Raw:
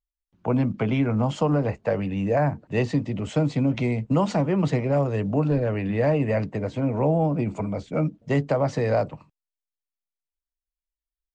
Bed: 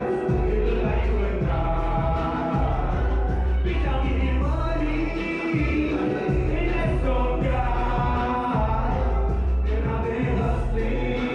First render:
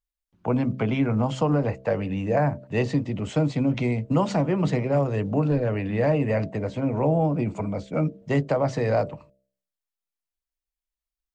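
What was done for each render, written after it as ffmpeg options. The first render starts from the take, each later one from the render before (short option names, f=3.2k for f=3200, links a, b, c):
-af "bandreject=f=65.42:t=h:w=4,bandreject=f=130.84:t=h:w=4,bandreject=f=196.26:t=h:w=4,bandreject=f=261.68:t=h:w=4,bandreject=f=327.1:t=h:w=4,bandreject=f=392.52:t=h:w=4,bandreject=f=457.94:t=h:w=4,bandreject=f=523.36:t=h:w=4,bandreject=f=588.78:t=h:w=4,bandreject=f=654.2:t=h:w=4"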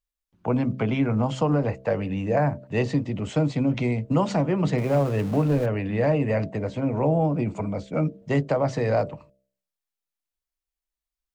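-filter_complex "[0:a]asettb=1/sr,asplit=3[a][b][c];[a]atrim=end=4.784[d];[b]atrim=start=4.78:end=5.66,asetpts=PTS-STARTPTS,afade=t=in:d=0.004:c=qsin,afade=t=out:st=0.876:d=0.004:c=qsin,aeval=exprs='val(0)+0.5*0.02*sgn(val(0))':c=same[e];[c]atrim=start=5.656[f];[d][e]acrossfade=d=0.004:c1=hsin:c2=qsin[g];[g][f]acrossfade=d=0.004:c1=qsin:c2=hsin"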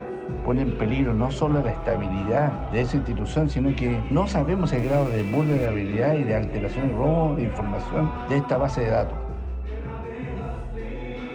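-filter_complex "[1:a]volume=-8dB[a];[0:a][a]amix=inputs=2:normalize=0"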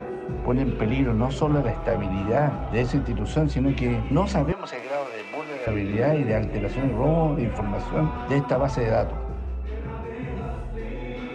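-filter_complex "[0:a]asettb=1/sr,asplit=3[a][b][c];[a]atrim=end=4.524[d];[b]atrim=start=4.52:end=5.67,asetpts=PTS-STARTPTS,afade=t=in:d=0.004:c=qsin,afade=t=out:st=1.146:d=0.004:c=qsin,highpass=680,lowpass=6.4k[e];[c]atrim=start=5.666[f];[d][e]acrossfade=d=0.004:c1=hsin:c2=qsin[g];[g][f]acrossfade=d=0.004:c1=qsin:c2=hsin"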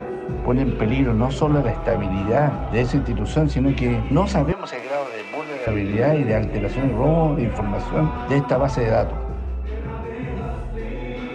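-af "volume=3.5dB"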